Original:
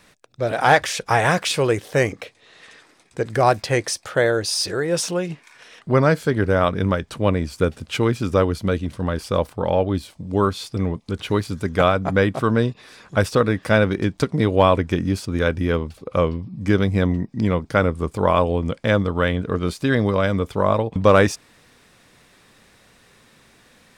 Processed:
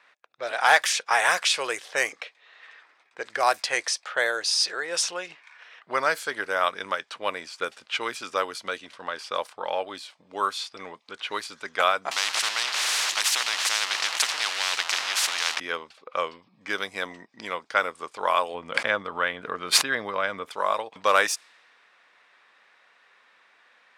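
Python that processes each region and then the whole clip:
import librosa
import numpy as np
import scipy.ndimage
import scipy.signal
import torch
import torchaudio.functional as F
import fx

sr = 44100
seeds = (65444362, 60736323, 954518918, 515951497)

y = fx.chain(x, sr, fx.zero_step(step_db=-31.0),
    fx.high_shelf(hz=9200.0, db=-5.0),
    fx.spectral_comp(ratio=10.0), at=(12.11, 15.6))
y = fx.chain(y, sr, fx.bass_treble(bass_db=8, treble_db=-15),
    fx.pre_swell(db_per_s=38.0), at=(18.54, 20.51))
y = fx.env_lowpass(y, sr, base_hz=2200.0, full_db=-13.0)
y = scipy.signal.sosfilt(scipy.signal.butter(2, 960.0, 'highpass', fs=sr, output='sos'), y)
y = fx.high_shelf(y, sr, hz=7600.0, db=7.5)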